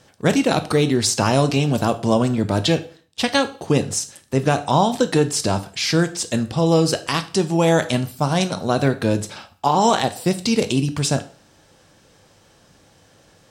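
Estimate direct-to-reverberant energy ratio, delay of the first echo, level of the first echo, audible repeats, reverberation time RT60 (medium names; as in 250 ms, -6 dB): 9.5 dB, no echo, no echo, no echo, 0.40 s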